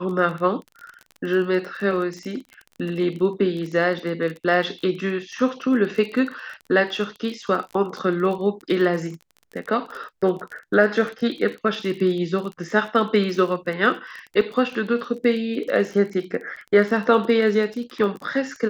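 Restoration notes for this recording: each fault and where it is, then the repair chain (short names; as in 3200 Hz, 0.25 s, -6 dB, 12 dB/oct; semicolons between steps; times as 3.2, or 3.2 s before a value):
crackle 28/s -30 dBFS
14.41 gap 2.9 ms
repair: de-click; interpolate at 14.41, 2.9 ms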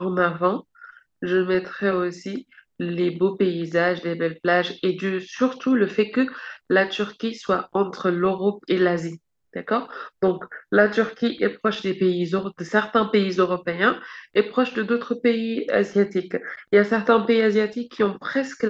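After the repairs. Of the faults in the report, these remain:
none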